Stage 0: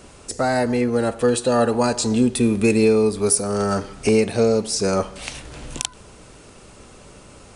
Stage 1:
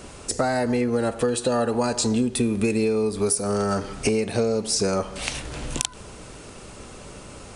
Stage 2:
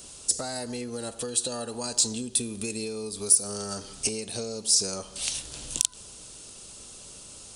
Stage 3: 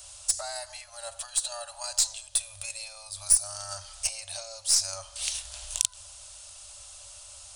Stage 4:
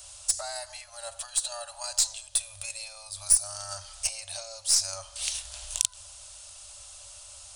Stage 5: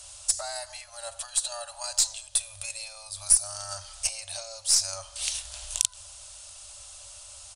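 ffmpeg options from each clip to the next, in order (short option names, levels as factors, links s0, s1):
-af "acompressor=threshold=0.0708:ratio=6,volume=1.5"
-af "aexciter=amount=5.8:drive=3.7:freq=3000,volume=0.237"
-af "aeval=exprs='0.891*(cos(1*acos(clip(val(0)/0.891,-1,1)))-cos(1*PI/2))+0.0282*(cos(8*acos(clip(val(0)/0.891,-1,1)))-cos(8*PI/2))':c=same,afftfilt=real='re*(1-between(b*sr/4096,100,540))':imag='im*(1-between(b*sr/4096,100,540))':win_size=4096:overlap=0.75,adynamicequalizer=threshold=0.00224:dfrequency=450:dqfactor=1.1:tfrequency=450:tqfactor=1.1:attack=5:release=100:ratio=0.375:range=3:mode=cutabove:tftype=bell,volume=0.891"
-af anull
-af "aresample=32000,aresample=44100,volume=1.12"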